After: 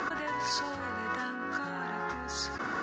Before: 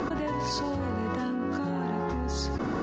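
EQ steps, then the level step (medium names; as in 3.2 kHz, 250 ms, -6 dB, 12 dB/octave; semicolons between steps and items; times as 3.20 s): tilt EQ +2.5 dB/octave; peaking EQ 1.5 kHz +11.5 dB 1.1 oct; -6.0 dB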